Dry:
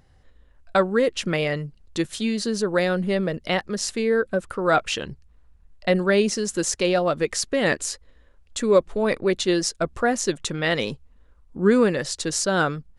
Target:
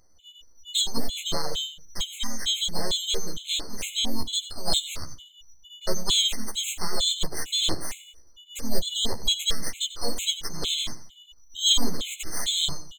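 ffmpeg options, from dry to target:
-filter_complex "[0:a]afftfilt=real='real(if(lt(b,272),68*(eq(floor(b/68),0)*1+eq(floor(b/68),1)*3+eq(floor(b/68),2)*0+eq(floor(b/68),3)*2)+mod(b,68),b),0)':imag='imag(if(lt(b,272),68*(eq(floor(b/68),0)*1+eq(floor(b/68),1)*3+eq(floor(b/68),2)*0+eq(floor(b/68),3)*2)+mod(b,68),b),0)':win_size=2048:overlap=0.75,acrossover=split=230[s0][s1];[s0]acrusher=bits=5:dc=4:mix=0:aa=0.000001[s2];[s2][s1]amix=inputs=2:normalize=0,highpass=f=42:w=0.5412,highpass=f=42:w=1.3066,equalizer=f=1400:t=o:w=0.95:g=-6.5,aeval=exprs='max(val(0),0)':c=same,highshelf=f=7900:g=-2,bandreject=f=50:t=h:w=6,bandreject=f=100:t=h:w=6,bandreject=f=150:t=h:w=6,bandreject=f=200:t=h:w=6,bandreject=f=250:t=h:w=6,bandreject=f=300:t=h:w=6,asplit=2[s3][s4];[s4]adelay=13,volume=0.75[s5];[s3][s5]amix=inputs=2:normalize=0,aecho=1:1:92|184|276:0.188|0.0622|0.0205,asplit=2[s6][s7];[s7]asetrate=52444,aresample=44100,atempo=0.840896,volume=0.562[s8];[s6][s8]amix=inputs=2:normalize=0,afftfilt=real='re*gt(sin(2*PI*2.2*pts/sr)*(1-2*mod(floor(b*sr/1024/2100),2)),0)':imag='im*gt(sin(2*PI*2.2*pts/sr)*(1-2*mod(floor(b*sr/1024/2100),2)),0)':win_size=1024:overlap=0.75"

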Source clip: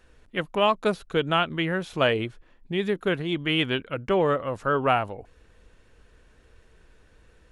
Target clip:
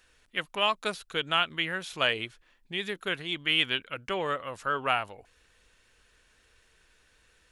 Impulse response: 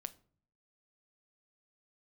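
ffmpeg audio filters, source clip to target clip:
-af "tiltshelf=f=1100:g=-8.5,volume=0.596"

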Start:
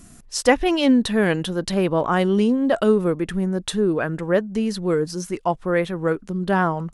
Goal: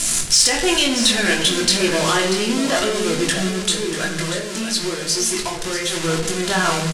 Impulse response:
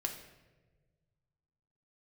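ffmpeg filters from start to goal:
-filter_complex "[0:a]aeval=exprs='val(0)+0.5*0.0891*sgn(val(0))':c=same,lowpass=f=9700:w=0.5412,lowpass=f=9700:w=1.3066,highshelf=f=3000:g=9.5,asettb=1/sr,asplit=3[s0][s1][s2];[s0]atrim=end=3.484[s3];[s1]atrim=start=3.48:end=5.93,asetpts=PTS-STARTPTS,afade=t=in:d=0.004:c=qsin,afade=t=out:st=2.446:d=0.004:c=qsin,acompressor=threshold=0.0891:ratio=6[s4];[s2]atrim=start=5.926[s5];[s3][s4]acrossfade=d=0.004:c1=hsin:c2=qsin[s6];[s6][s5]acrossfade=d=0.004:c1=qsin:c2=hsin,flanger=delay=18:depth=4.3:speed=1,alimiter=limit=0.224:level=0:latency=1:release=13,tiltshelf=f=1300:g=-5.5,acontrast=33,aecho=1:1:638:0.316[s7];[1:a]atrim=start_sample=2205,afade=t=out:st=0.34:d=0.01,atrim=end_sample=15435[s8];[s7][s8]afir=irnorm=-1:irlink=0,volume=0.794"

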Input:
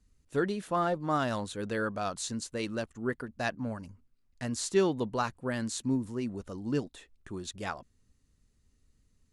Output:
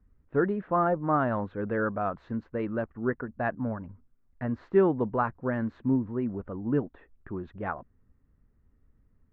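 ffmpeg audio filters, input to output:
-af "lowpass=f=1700:w=0.5412,lowpass=f=1700:w=1.3066,volume=1.58"

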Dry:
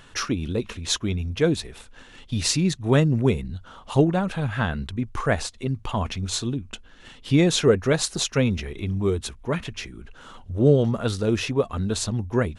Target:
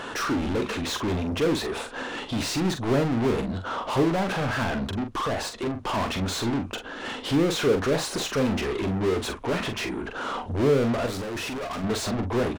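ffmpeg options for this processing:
-filter_complex "[0:a]firequalizer=gain_entry='entry(160,0);entry(260,6);entry(2100,-7)':delay=0.05:min_phase=1,asettb=1/sr,asplit=3[s0][s1][s2];[s0]atrim=end=4.634[s3];[s1]atrim=start=4.63:end=5.86,asetpts=PTS-STARTPTS,afade=t=in:d=0.004:c=qsin,afade=t=out:st=1.226:d=0.004:c=qsin,acompressor=threshold=0.0562:ratio=5[s4];[s2]atrim=start=5.856[s5];[s3][s4]acrossfade=d=0.004:c1=hsin:c2=qsin[s6];[s6][s5]acrossfade=d=0.004:c1=qsin:c2=hsin,asplit=2[s7][s8];[s8]highpass=f=720:p=1,volume=44.7,asoftclip=type=tanh:threshold=0.15[s9];[s7][s9]amix=inputs=2:normalize=0,lowpass=f=4100:p=1,volume=0.501,asettb=1/sr,asplit=3[s10][s11][s12];[s10]atrim=end=11.064[s13];[s11]atrim=start=11.06:end=11.84,asetpts=PTS-STARTPTS,afade=t=in:d=0.004:c=qsin,afade=t=out:st=0.776:d=0.004:c=qsin,volume=21.1,asoftclip=hard,volume=0.0473[s14];[s12]atrim=start=11.836[s15];[s13][s14]acrossfade=d=0.004:c1=hsin:c2=qsin[s16];[s16][s15]acrossfade=d=0.004:c1=qsin:c2=hsin,asplit=2[s17][s18];[s18]adelay=43,volume=0.422[s19];[s17][s19]amix=inputs=2:normalize=0,volume=0.562"

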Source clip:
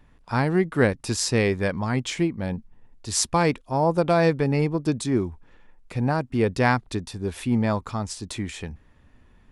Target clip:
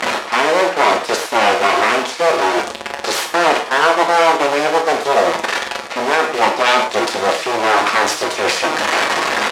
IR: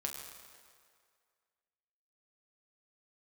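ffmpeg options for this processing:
-filter_complex "[0:a]aeval=exprs='val(0)+0.5*0.0299*sgn(val(0))':c=same,deesser=1,aecho=1:1:6.4:0.75,areverse,acompressor=threshold=0.0251:ratio=5,areverse,aeval=exprs='abs(val(0))':c=same,asplit=2[s0][s1];[s1]acrusher=bits=5:mix=0:aa=0.000001,volume=0.447[s2];[s0][s2]amix=inputs=2:normalize=0,highpass=620,lowpass=7000[s3];[1:a]atrim=start_sample=2205,afade=t=out:st=0.17:d=0.01,atrim=end_sample=7938[s4];[s3][s4]afir=irnorm=-1:irlink=0,alimiter=level_in=22.4:limit=0.891:release=50:level=0:latency=1,volume=0.891"

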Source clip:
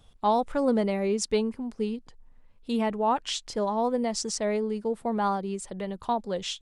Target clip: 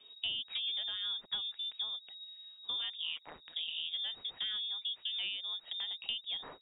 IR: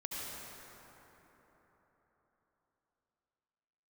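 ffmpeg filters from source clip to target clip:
-filter_complex "[0:a]asplit=3[s0][s1][s2];[s0]afade=t=out:st=2.9:d=0.02[s3];[s1]tremolo=f=160:d=0.947,afade=t=in:st=2.9:d=0.02,afade=t=out:st=3.93:d=0.02[s4];[s2]afade=t=in:st=3.93:d=0.02[s5];[s3][s4][s5]amix=inputs=3:normalize=0,lowpass=f=3200:t=q:w=0.5098,lowpass=f=3200:t=q:w=0.6013,lowpass=f=3200:t=q:w=0.9,lowpass=f=3200:t=q:w=2.563,afreqshift=-3800,acrossover=split=380|1400[s6][s7][s8];[s6]acompressor=threshold=0.00126:ratio=4[s9];[s7]acompressor=threshold=0.00158:ratio=4[s10];[s8]acompressor=threshold=0.0126:ratio=4[s11];[s9][s10][s11]amix=inputs=3:normalize=0"

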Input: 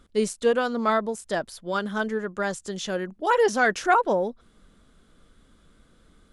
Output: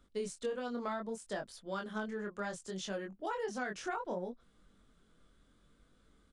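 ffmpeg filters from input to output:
-filter_complex "[0:a]aresample=22050,aresample=44100,flanger=delay=20:depth=4.6:speed=0.66,acrossover=split=190[s0][s1];[s1]acompressor=threshold=0.0398:ratio=10[s2];[s0][s2]amix=inputs=2:normalize=0,volume=0.473"

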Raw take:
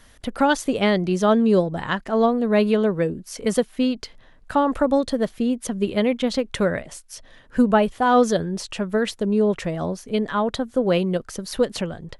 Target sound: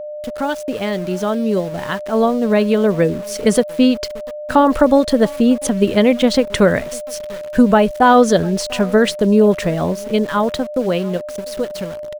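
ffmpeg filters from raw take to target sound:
-filter_complex "[0:a]alimiter=limit=0.282:level=0:latency=1:release=238,dynaudnorm=f=390:g=13:m=5.62,asplit=2[s0][s1];[s1]adelay=696,lowpass=f=2900:p=1,volume=0.0708,asplit=2[s2][s3];[s3]adelay=696,lowpass=f=2900:p=1,volume=0.18[s4];[s0][s2][s4]amix=inputs=3:normalize=0,aeval=exprs='val(0)*gte(abs(val(0)),0.0299)':c=same,aeval=exprs='val(0)+0.0562*sin(2*PI*600*n/s)':c=same,volume=0.891"

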